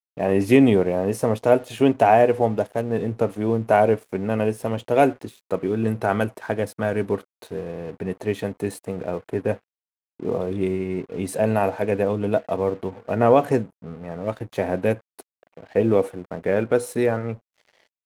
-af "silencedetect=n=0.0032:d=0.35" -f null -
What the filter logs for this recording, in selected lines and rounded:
silence_start: 9.59
silence_end: 10.20 | silence_duration: 0.60